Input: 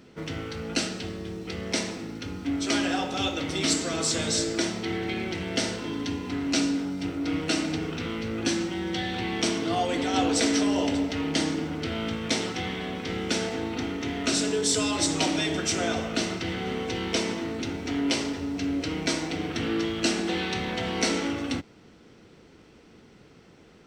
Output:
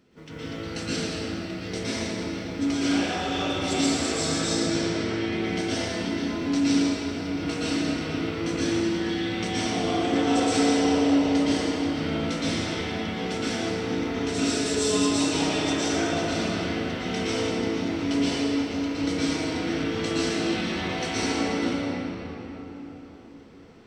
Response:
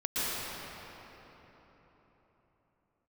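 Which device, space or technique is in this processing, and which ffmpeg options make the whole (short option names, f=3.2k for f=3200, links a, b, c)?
cathedral: -filter_complex "[0:a]asettb=1/sr,asplit=3[a][b][c];[a]atrim=end=4.534[d];[b]atrim=start=4.53:end=5.23,asetpts=PTS-STARTPTS,afade=t=in:d=0.004:c=qsin,afade=t=out:st=0.696:d=0.004:c=qsin,lowpass=6.6k[e];[c]atrim=start=5.226[f];[d][e]acrossfade=d=0.004:c1=hsin:c2=qsin[g];[g][f]acrossfade=d=0.004:c1=qsin:c2=hsin[h];[1:a]atrim=start_sample=2205[i];[h][i]afir=irnorm=-1:irlink=0,volume=-8.5dB"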